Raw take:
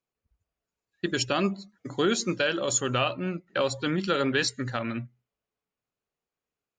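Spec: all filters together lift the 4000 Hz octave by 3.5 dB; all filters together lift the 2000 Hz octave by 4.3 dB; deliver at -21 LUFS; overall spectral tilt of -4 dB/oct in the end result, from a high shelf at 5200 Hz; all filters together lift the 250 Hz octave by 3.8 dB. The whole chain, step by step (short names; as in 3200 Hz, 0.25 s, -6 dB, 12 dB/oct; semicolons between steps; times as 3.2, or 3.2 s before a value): bell 250 Hz +5 dB; bell 2000 Hz +5.5 dB; bell 4000 Hz +5 dB; high shelf 5200 Hz -6 dB; gain +4 dB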